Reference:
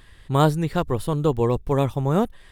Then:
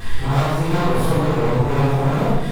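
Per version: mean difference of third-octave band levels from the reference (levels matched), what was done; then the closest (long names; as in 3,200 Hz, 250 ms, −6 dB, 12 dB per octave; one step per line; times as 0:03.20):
11.5 dB: random phases in long frames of 200 ms
downward compressor 5 to 1, threshold −31 dBFS, peak gain reduction 17 dB
leveller curve on the samples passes 5
rectangular room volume 340 cubic metres, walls mixed, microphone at 3.7 metres
level −6.5 dB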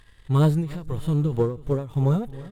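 6.0 dB: harmonic and percussive parts rebalanced percussive −17 dB
leveller curve on the samples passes 1
repeating echo 310 ms, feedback 50%, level −19.5 dB
every ending faded ahead of time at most 120 dB per second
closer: second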